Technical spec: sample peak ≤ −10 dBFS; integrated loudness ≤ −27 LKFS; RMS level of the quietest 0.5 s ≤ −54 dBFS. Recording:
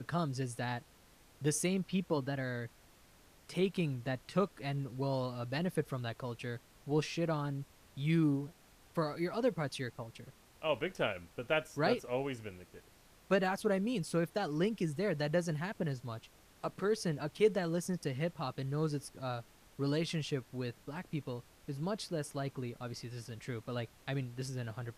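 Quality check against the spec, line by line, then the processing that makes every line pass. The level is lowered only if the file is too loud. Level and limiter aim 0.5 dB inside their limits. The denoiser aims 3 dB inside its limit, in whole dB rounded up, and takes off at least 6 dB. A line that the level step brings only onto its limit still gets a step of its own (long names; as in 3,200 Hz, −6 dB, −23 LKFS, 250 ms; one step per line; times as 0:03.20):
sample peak −17.5 dBFS: in spec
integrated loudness −36.5 LKFS: in spec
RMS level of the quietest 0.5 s −62 dBFS: in spec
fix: no processing needed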